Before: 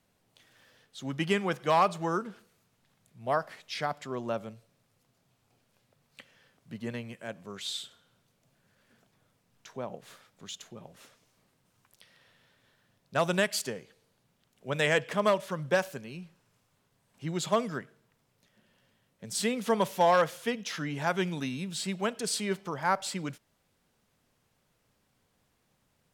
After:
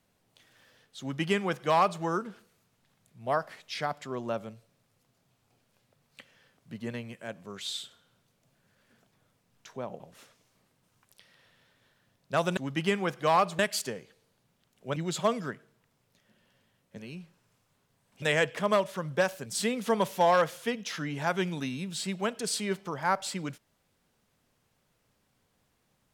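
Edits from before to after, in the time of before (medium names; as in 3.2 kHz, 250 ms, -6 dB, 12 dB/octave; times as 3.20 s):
1.00–2.02 s: copy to 13.39 s
10.00–10.82 s: delete
14.76–16.00 s: swap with 17.24–19.26 s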